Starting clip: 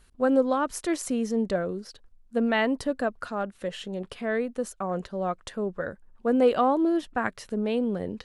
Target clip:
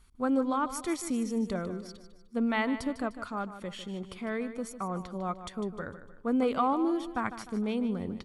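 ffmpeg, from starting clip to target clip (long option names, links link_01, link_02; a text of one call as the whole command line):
ffmpeg -i in.wav -filter_complex "[0:a]aecho=1:1:0.9:0.49,asplit=2[link_01][link_02];[link_02]aecho=0:1:151|302|453|604:0.251|0.108|0.0464|0.02[link_03];[link_01][link_03]amix=inputs=2:normalize=0,volume=-4.5dB" out.wav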